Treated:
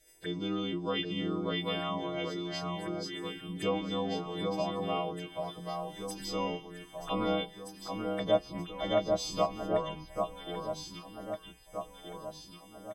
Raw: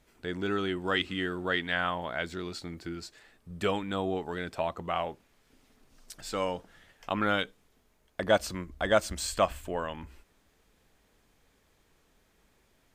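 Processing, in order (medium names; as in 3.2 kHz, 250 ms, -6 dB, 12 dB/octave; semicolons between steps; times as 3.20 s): partials quantised in pitch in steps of 2 st; comb 6.2 ms, depth 75%; touch-sensitive phaser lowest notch 170 Hz, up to 1.7 kHz, full sweep at -33.5 dBFS; low-pass that closes with the level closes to 1.8 kHz, closed at -22 dBFS; on a send: echo whose repeats swap between lows and highs 787 ms, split 1.6 kHz, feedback 70%, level -3.5 dB; on the sum: trim -2.5 dB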